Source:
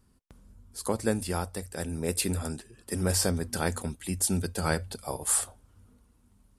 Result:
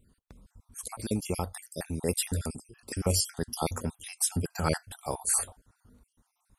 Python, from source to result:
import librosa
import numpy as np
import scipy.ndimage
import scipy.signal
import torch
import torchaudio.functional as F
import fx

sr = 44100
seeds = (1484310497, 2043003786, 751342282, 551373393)

y = fx.spec_dropout(x, sr, seeds[0], share_pct=47)
y = y * 10.0 ** (1.5 / 20.0)